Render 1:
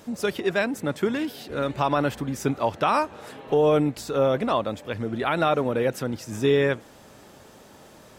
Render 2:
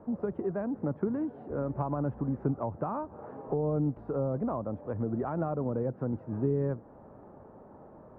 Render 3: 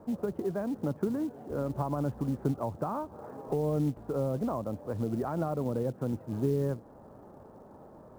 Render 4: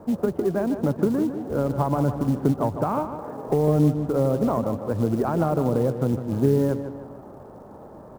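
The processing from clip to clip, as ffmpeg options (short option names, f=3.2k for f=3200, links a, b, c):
-filter_complex "[0:a]lowpass=f=1.1k:w=0.5412,lowpass=f=1.1k:w=1.3066,acrossover=split=230[a][b];[b]acompressor=threshold=-31dB:ratio=6[c];[a][c]amix=inputs=2:normalize=0,volume=-1dB"
-af "acrusher=bits=7:mode=log:mix=0:aa=0.000001"
-filter_complex "[0:a]aeval=exprs='0.133*(cos(1*acos(clip(val(0)/0.133,-1,1)))-cos(1*PI/2))+0.00237*(cos(7*acos(clip(val(0)/0.133,-1,1)))-cos(7*PI/2))':c=same,asplit=2[a][b];[b]adelay=153,lowpass=f=3.9k:p=1,volume=-9.5dB,asplit=2[c][d];[d]adelay=153,lowpass=f=3.9k:p=1,volume=0.47,asplit=2[e][f];[f]adelay=153,lowpass=f=3.9k:p=1,volume=0.47,asplit=2[g][h];[h]adelay=153,lowpass=f=3.9k:p=1,volume=0.47,asplit=2[i][j];[j]adelay=153,lowpass=f=3.9k:p=1,volume=0.47[k];[a][c][e][g][i][k]amix=inputs=6:normalize=0,volume=9dB"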